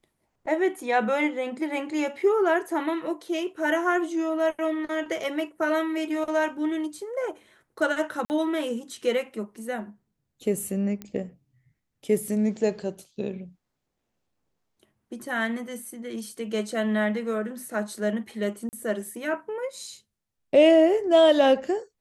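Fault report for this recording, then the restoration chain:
0:08.25–0:08.30: drop-out 49 ms
0:11.02: click −21 dBFS
0:18.69–0:18.73: drop-out 39 ms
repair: click removal
repair the gap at 0:08.25, 49 ms
repair the gap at 0:18.69, 39 ms

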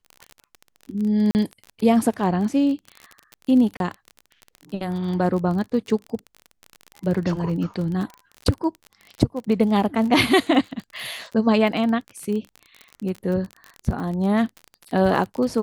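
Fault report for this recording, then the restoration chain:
surface crackle 31 per second −28 dBFS
0:01.31–0:01.35: drop-out 39 ms
0:03.77–0:03.80: drop-out 32 ms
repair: click removal
repair the gap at 0:01.31, 39 ms
repair the gap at 0:03.77, 32 ms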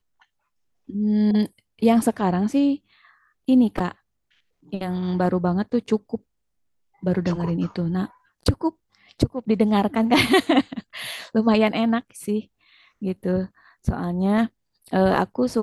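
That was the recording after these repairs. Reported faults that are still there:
none of them is left

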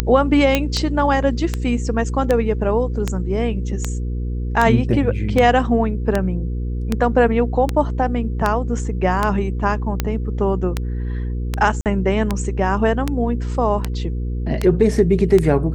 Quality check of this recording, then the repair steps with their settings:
mains hum 60 Hz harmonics 8 −23 dBFS
scratch tick 78 rpm −5 dBFS
0:00.55: click −2 dBFS
0:11.81–0:11.86: drop-out 48 ms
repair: click removal
hum removal 60 Hz, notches 8
repair the gap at 0:11.81, 48 ms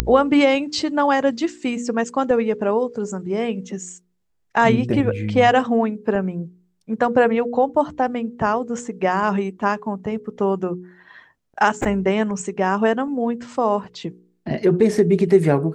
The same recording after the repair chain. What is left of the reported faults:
none of them is left

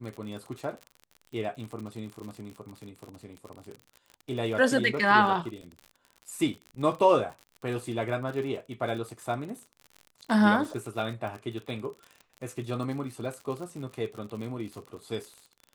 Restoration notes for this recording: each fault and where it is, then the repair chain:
surface crackle 55 per second −36 dBFS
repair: click removal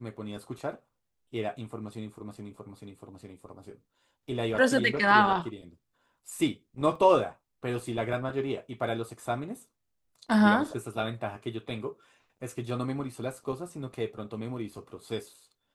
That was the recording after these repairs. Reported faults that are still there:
none of them is left

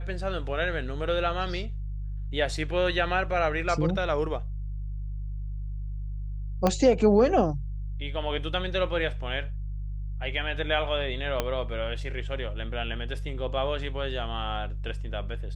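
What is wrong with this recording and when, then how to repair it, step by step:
mains hum 50 Hz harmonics 3 −33 dBFS
0:06.67: click −10 dBFS
0:11.40: click −11 dBFS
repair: click removal
hum removal 50 Hz, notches 3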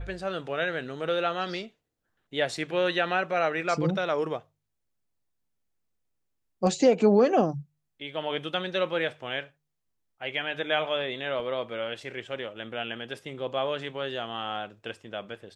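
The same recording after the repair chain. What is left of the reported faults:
0:06.67: click
0:11.40: click

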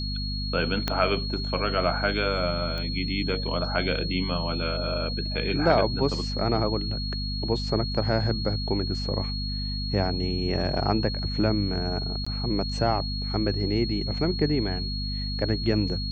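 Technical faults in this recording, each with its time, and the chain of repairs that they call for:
mains hum 50 Hz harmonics 5 −31 dBFS
whistle 4,300 Hz −33 dBFS
0:00.88: click −10 dBFS
0:02.78: click −21 dBFS
0:12.25–0:12.27: drop-out 15 ms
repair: click removal
notch filter 4,300 Hz, Q 30
hum removal 50 Hz, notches 5
repair the gap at 0:12.25, 15 ms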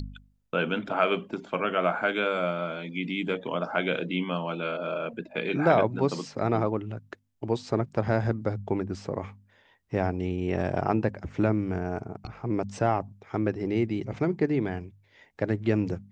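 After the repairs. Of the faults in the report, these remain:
0:00.88: click

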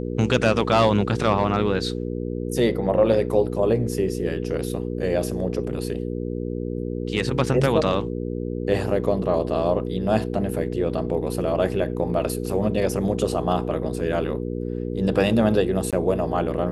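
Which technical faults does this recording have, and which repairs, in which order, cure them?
mains hum 60 Hz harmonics 8 −28 dBFS
0:15.91–0:15.93: drop-out 17 ms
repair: hum removal 60 Hz, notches 8
repair the gap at 0:15.91, 17 ms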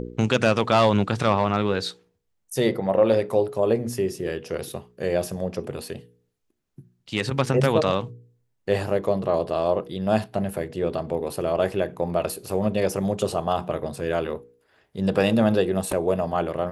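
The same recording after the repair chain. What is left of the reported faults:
none of them is left

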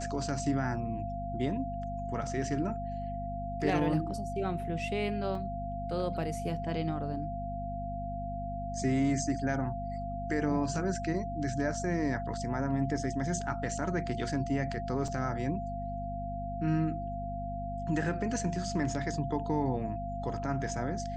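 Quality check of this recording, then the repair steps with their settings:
mains hum 50 Hz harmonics 5 −39 dBFS
whistle 690 Hz −37 dBFS
0:05.35: drop-out 2.2 ms
0:15.08: drop-out 3.3 ms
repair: hum removal 50 Hz, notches 5
notch filter 690 Hz, Q 30
repair the gap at 0:05.35, 2.2 ms
repair the gap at 0:15.08, 3.3 ms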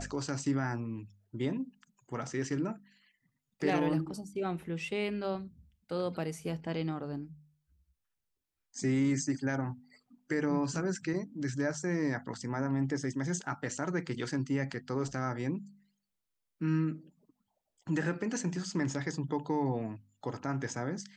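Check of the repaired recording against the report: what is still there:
none of them is left

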